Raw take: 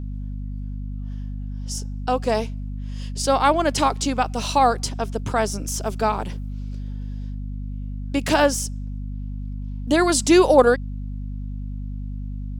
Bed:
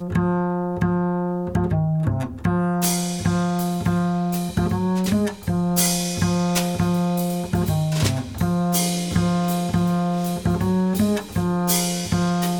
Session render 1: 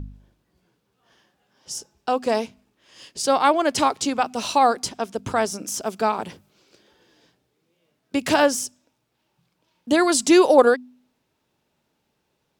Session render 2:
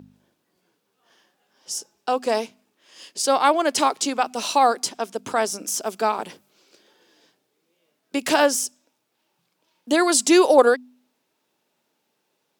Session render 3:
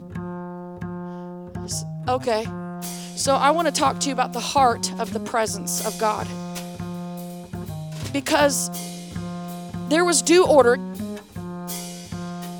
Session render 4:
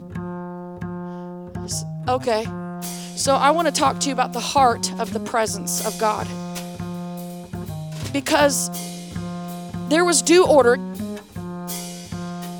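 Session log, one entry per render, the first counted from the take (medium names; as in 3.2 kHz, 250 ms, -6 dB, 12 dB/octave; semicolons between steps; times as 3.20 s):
de-hum 50 Hz, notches 5
high-pass 250 Hz 12 dB/octave; treble shelf 6.4 kHz +5 dB
add bed -11 dB
trim +1.5 dB; peak limiter -3 dBFS, peak gain reduction 3 dB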